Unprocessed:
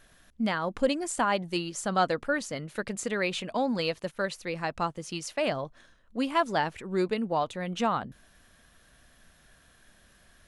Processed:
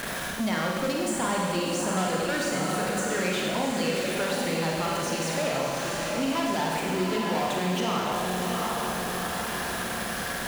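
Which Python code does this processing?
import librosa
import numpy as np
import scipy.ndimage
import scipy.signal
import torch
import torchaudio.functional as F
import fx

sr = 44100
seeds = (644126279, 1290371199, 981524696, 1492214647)

y = x + 0.5 * 10.0 ** (-34.0 / 20.0) * np.sign(x)
y = fx.echo_diffused(y, sr, ms=742, feedback_pct=43, wet_db=-6)
y = 10.0 ** (-25.0 / 20.0) * np.tanh(y / 10.0 ** (-25.0 / 20.0))
y = fx.highpass(y, sr, hz=81.0, slope=6)
y = fx.rev_schroeder(y, sr, rt60_s=1.5, comb_ms=33, drr_db=-2.0)
y = fx.band_squash(y, sr, depth_pct=70)
y = y * librosa.db_to_amplitude(-1.0)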